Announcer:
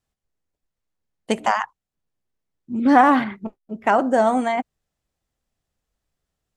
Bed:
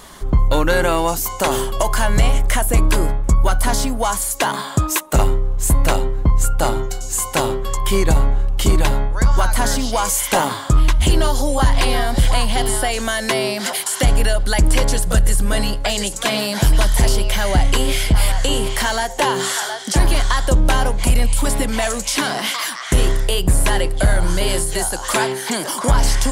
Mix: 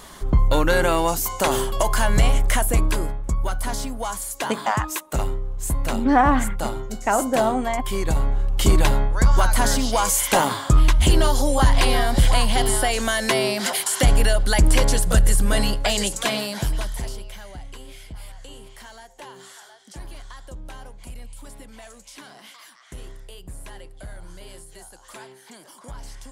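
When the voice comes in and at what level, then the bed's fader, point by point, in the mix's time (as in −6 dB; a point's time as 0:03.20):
3.20 s, −3.0 dB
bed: 0:02.62 −2.5 dB
0:03.14 −9 dB
0:07.94 −9 dB
0:08.65 −1.5 dB
0:16.12 −1.5 dB
0:17.58 −23.5 dB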